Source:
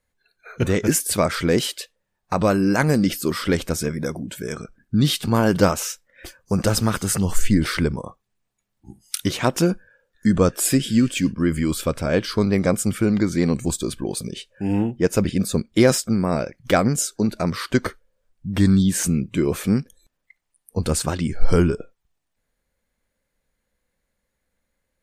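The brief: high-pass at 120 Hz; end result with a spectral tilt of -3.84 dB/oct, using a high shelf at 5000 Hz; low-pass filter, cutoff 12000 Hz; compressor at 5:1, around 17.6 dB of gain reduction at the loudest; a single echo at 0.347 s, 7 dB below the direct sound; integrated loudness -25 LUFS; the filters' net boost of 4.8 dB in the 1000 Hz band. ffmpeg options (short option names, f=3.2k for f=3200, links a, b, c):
-af "highpass=120,lowpass=12k,equalizer=f=1k:t=o:g=6,highshelf=f=5k:g=8,acompressor=threshold=-30dB:ratio=5,aecho=1:1:347:0.447,volume=7.5dB"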